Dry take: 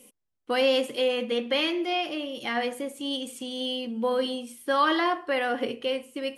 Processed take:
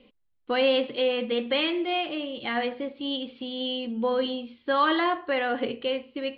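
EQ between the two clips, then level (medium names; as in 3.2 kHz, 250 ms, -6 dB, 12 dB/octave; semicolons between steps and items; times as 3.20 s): steep low-pass 4.3 kHz 72 dB/octave; bass shelf 83 Hz +10.5 dB; 0.0 dB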